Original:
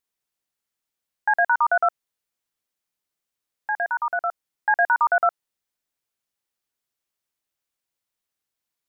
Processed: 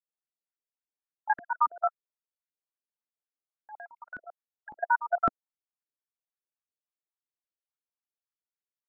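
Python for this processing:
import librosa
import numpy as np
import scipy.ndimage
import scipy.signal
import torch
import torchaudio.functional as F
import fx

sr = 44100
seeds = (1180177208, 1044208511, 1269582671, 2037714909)

y = fx.spec_dropout(x, sr, seeds[0], share_pct=24)
y = fx.level_steps(y, sr, step_db=19)
y = fx.filter_lfo_bandpass(y, sr, shape='saw_up', hz=3.6, low_hz=260.0, high_hz=1600.0, q=1.8)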